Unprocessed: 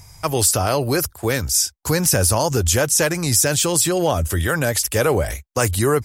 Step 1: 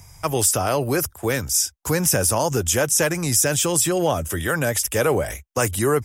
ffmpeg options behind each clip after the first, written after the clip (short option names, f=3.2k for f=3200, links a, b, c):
-filter_complex "[0:a]equalizer=f=4.3k:w=7.4:g=-13.5,acrossover=split=120|3000[a][b][c];[a]acompressor=threshold=-33dB:ratio=6[d];[d][b][c]amix=inputs=3:normalize=0,volume=-1.5dB"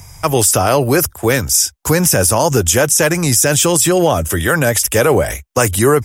-af "alimiter=level_in=9.5dB:limit=-1dB:release=50:level=0:latency=1,volume=-1dB"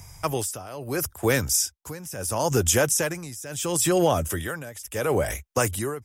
-af "tremolo=f=0.74:d=0.88,volume=-7.5dB"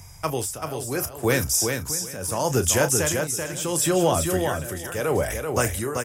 -filter_complex "[0:a]asplit=2[a][b];[b]adelay=32,volume=-12dB[c];[a][c]amix=inputs=2:normalize=0,asplit=2[d][e];[e]aecho=0:1:386|772|1158:0.562|0.09|0.0144[f];[d][f]amix=inputs=2:normalize=0"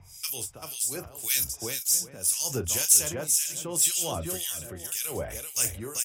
-filter_complex "[0:a]acrossover=split=1900[a][b];[a]aeval=exprs='val(0)*(1-1/2+1/2*cos(2*PI*1.9*n/s))':c=same[c];[b]aeval=exprs='val(0)*(1-1/2-1/2*cos(2*PI*1.9*n/s))':c=same[d];[c][d]amix=inputs=2:normalize=0,aexciter=amount=2.2:drive=9.7:freq=2.5k,volume=-7.5dB"